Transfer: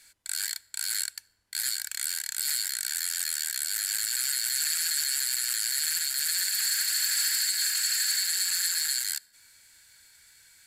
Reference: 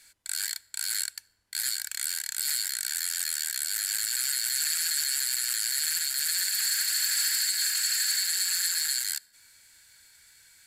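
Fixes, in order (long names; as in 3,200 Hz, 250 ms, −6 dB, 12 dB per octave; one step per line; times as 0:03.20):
repair the gap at 0:08.51, 2.2 ms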